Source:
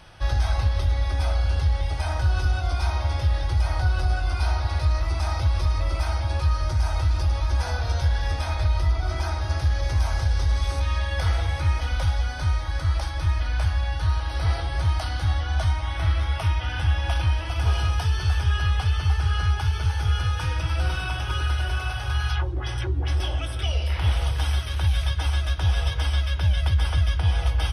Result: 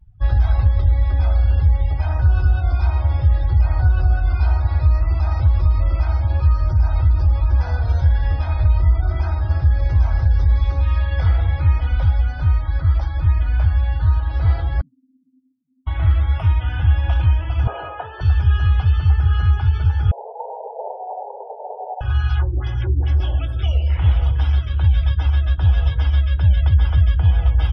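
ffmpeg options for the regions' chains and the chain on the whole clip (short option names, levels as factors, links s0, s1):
-filter_complex "[0:a]asettb=1/sr,asplit=3[s0][s1][s2];[s0]atrim=end=14.814[s3];[s1]atrim=start=14.81:end=15.87,asetpts=PTS-STARTPTS,afade=t=in:d=0.004:c=qsin,afade=t=out:st=1.056:d=0.004:c=qsin,aeval=exprs='val(0)*sin(2*PI*52*n/s)':c=same,asuperpass=centerf=260:order=4:qfactor=6.6[s4];[s2]atrim=start=15.866[s5];[s3][s4]acrossfade=d=0.004:c1=hsin:c2=qsin[s6];[s6][s5]acrossfade=d=0.004:c1=qsin:c2=hsin,asettb=1/sr,asplit=3[s7][s8][s9];[s7]atrim=end=17.674[s10];[s8]atrim=start=17.67:end=18.21,asetpts=PTS-STARTPTS,afade=t=in:d=0.004:c=qsin,afade=t=out:st=0.536:d=0.004:c=qsin,highpass=360,lowpass=2500,equalizer=f=570:w=1.1:g=10[s11];[s9]atrim=start=18.206[s12];[s10][s11]acrossfade=d=0.004:c1=hsin:c2=qsin[s13];[s13][s12]acrossfade=d=0.004:c1=qsin:c2=hsin,asettb=1/sr,asplit=3[s14][s15][s16];[s14]atrim=end=20.114[s17];[s15]atrim=start=20.11:end=22.01,asetpts=PTS-STARTPTS,afade=t=in:d=0.004:c=qsin,afade=t=out:st=1.896:d=0.004:c=qsin,aeval=exprs='0.224*sin(PI/2*3.16*val(0)/0.224)':c=same,asuperpass=centerf=620:order=20:qfactor=1.2[s18];[s16]atrim=start=22.006[s19];[s17][s18]acrossfade=d=0.004:c1=hsin:c2=qsin[s20];[s20][s19]acrossfade=d=0.004:c1=qsin:c2=hsin,afftdn=nr=35:nf=-38,bass=f=250:g=7,treble=f=4000:g=-11"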